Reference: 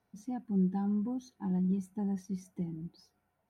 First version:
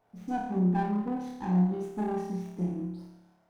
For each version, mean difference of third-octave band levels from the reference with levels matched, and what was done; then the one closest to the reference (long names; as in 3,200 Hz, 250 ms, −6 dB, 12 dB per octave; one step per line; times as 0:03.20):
7.0 dB: parametric band 720 Hz +9.5 dB 2 octaves
mains-hum notches 50/100/150/200/250/300/350/400/450/500 Hz
flutter between parallel walls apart 4.8 metres, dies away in 0.87 s
windowed peak hold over 9 samples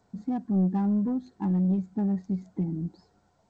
2.5 dB: adaptive Wiener filter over 15 samples
in parallel at +1 dB: downward compressor 10 to 1, threshold −41 dBFS, peak gain reduction 16 dB
on the sum: soft clipping −23 dBFS, distortion −20 dB
level +5.5 dB
G.722 64 kbit/s 16,000 Hz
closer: second